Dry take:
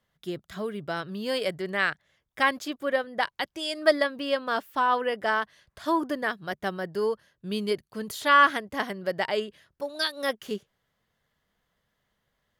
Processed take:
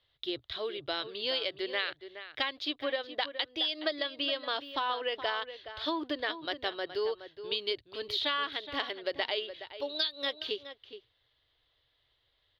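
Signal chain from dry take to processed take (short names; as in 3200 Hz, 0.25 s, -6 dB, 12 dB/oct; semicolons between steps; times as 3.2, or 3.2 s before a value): EQ curve 120 Hz 0 dB, 190 Hz -29 dB, 290 Hz -2 dB, 1600 Hz -4 dB, 3900 Hz +13 dB, 7900 Hz -25 dB, 12000 Hz -19 dB; compressor 12:1, threshold -28 dBFS, peak gain reduction 13.5 dB; outdoor echo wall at 72 m, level -11 dB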